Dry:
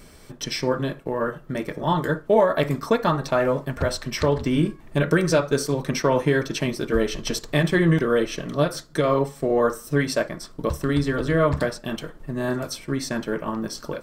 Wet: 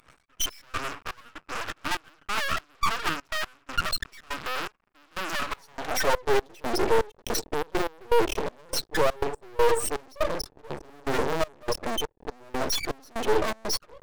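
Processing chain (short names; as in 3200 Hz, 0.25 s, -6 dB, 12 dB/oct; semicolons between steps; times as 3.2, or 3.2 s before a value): spectral contrast raised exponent 3.1; bell 530 Hz -14 dB 0.77 oct; fuzz box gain 46 dB, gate -51 dBFS; high-pass sweep 1300 Hz -> 440 Hz, 5.34–6.3; half-wave rectifier; step gate "xx.x..xxx..x" 122 bpm -24 dB; gain -7 dB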